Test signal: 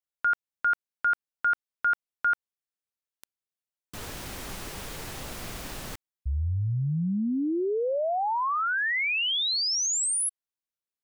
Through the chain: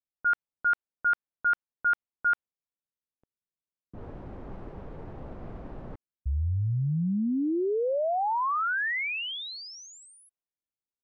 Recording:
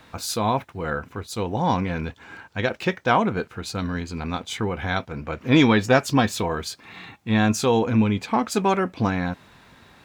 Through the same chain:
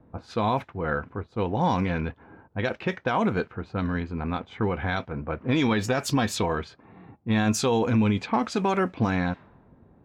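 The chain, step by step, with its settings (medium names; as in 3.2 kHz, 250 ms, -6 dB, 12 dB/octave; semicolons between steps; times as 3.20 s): level-controlled noise filter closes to 430 Hz, open at -17.5 dBFS; peak limiter -14.5 dBFS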